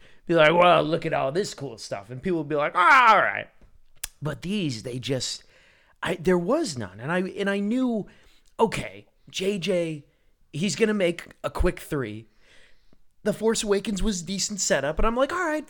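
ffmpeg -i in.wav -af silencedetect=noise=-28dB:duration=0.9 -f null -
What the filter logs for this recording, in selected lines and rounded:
silence_start: 12.17
silence_end: 13.26 | silence_duration: 1.08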